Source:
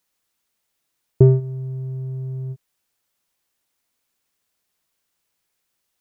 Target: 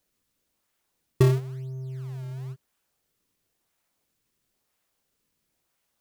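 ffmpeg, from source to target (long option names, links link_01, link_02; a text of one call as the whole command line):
ffmpeg -i in.wav -filter_complex "[0:a]tiltshelf=frequency=640:gain=-4,asplit=2[link_01][link_02];[link_02]acrusher=samples=33:mix=1:aa=0.000001:lfo=1:lforange=52.8:lforate=0.99,volume=-6dB[link_03];[link_01][link_03]amix=inputs=2:normalize=0,volume=-6.5dB" out.wav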